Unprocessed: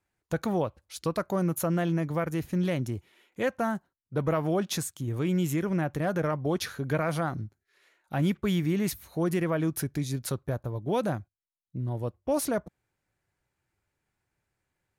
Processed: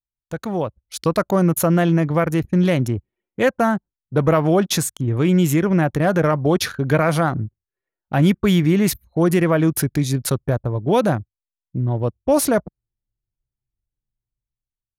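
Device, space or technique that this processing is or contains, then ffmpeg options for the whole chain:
voice memo with heavy noise removal: -af "anlmdn=0.1,dynaudnorm=f=160:g=9:m=3.55"

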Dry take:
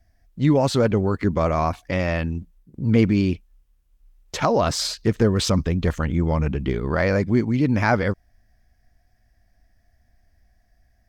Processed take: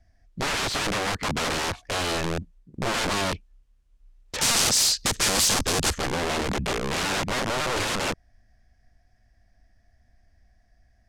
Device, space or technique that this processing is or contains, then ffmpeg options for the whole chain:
overflowing digital effects unit: -filter_complex "[0:a]aeval=exprs='(mod(11.2*val(0)+1,2)-1)/11.2':c=same,lowpass=8200,asplit=3[s0][s1][s2];[s0]afade=t=out:st=4.38:d=0.02[s3];[s1]bass=f=250:g=3,treble=f=4000:g=13,afade=t=in:st=4.38:d=0.02,afade=t=out:st=5.93:d=0.02[s4];[s2]afade=t=in:st=5.93:d=0.02[s5];[s3][s4][s5]amix=inputs=3:normalize=0"

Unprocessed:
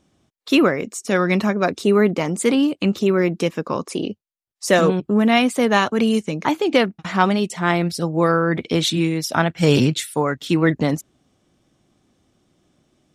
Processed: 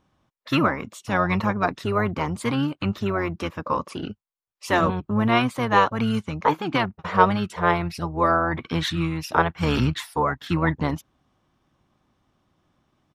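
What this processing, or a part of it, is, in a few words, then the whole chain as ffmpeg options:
octave pedal: -filter_complex "[0:a]equalizer=f=500:t=o:w=1:g=-9,equalizer=f=1000:t=o:w=1:g=11,equalizer=f=8000:t=o:w=1:g=-9,asplit=2[s0][s1];[s1]asetrate=22050,aresample=44100,atempo=2,volume=0.562[s2];[s0][s2]amix=inputs=2:normalize=0,volume=0.531"

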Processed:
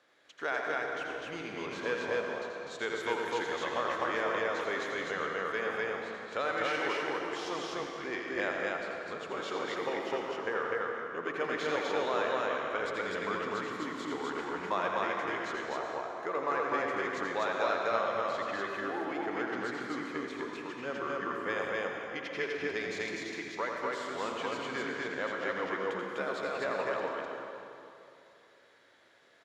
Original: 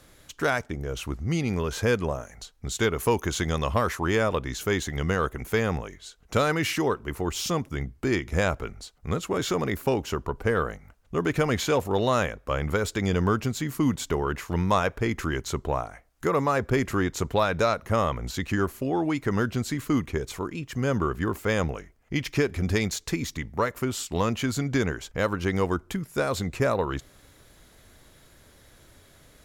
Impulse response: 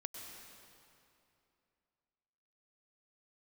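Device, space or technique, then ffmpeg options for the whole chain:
station announcement: -filter_complex "[0:a]highpass=430,lowpass=3900,equalizer=f=1700:t=o:w=0.27:g=4,aecho=1:1:84.55|250.7:0.501|0.891[s0];[1:a]atrim=start_sample=2205[s1];[s0][s1]afir=irnorm=-1:irlink=0,volume=0.562"

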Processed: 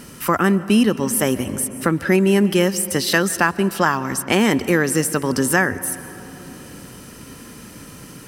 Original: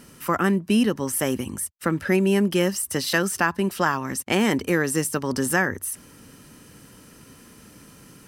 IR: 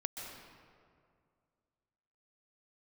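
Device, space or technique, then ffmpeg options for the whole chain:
ducked reverb: -filter_complex "[0:a]asplit=3[s0][s1][s2];[1:a]atrim=start_sample=2205[s3];[s1][s3]afir=irnorm=-1:irlink=0[s4];[s2]apad=whole_len=364952[s5];[s4][s5]sidechaincompress=threshold=0.0355:ratio=8:attack=16:release=942,volume=1.12[s6];[s0][s6]amix=inputs=2:normalize=0,volume=1.41"

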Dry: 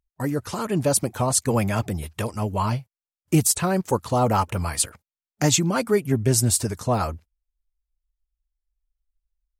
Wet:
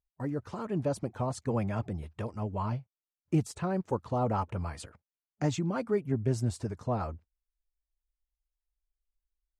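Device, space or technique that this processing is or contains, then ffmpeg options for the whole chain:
through cloth: -af "lowpass=7400,highshelf=f=2300:g=-14,volume=0.398"

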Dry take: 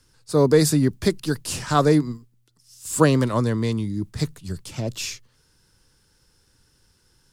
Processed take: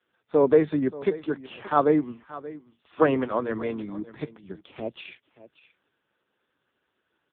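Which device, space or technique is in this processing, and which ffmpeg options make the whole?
satellite phone: -filter_complex "[0:a]asettb=1/sr,asplit=3[s0][s1][s2];[s0]atrim=end=2.874[s3];[s1]atrim=start=2.87:end=3.68,asetpts=PTS-STARTPTS,afade=t=in:d=0.004:c=qsin,afade=t=out:st=0.806:d=0.004:c=qsin,bandreject=f=60:t=h:w=6,bandreject=f=120:t=h:w=6,bandreject=f=180:t=h:w=6,bandreject=f=240:t=h:w=6,bandreject=f=300:t=h:w=6,bandreject=f=360:t=h:w=6,bandreject=f=420:t=h:w=6[s4];[s2]atrim=start=3.676[s5];[s3][s4]acrossfade=d=0.004:c1=hsin:c2=qsin[s6];[s6][s5]acrossfade=d=0.004:c1=qsin:c2=hsin,highpass=310,lowpass=3300,aecho=1:1:580:0.133" -ar 8000 -c:a libopencore_amrnb -b:a 4750

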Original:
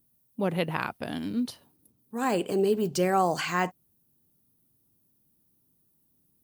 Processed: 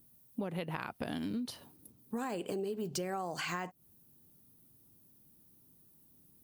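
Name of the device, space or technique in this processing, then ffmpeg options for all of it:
serial compression, peaks first: -af "acompressor=threshold=0.02:ratio=6,acompressor=threshold=0.00891:ratio=3,volume=1.88"

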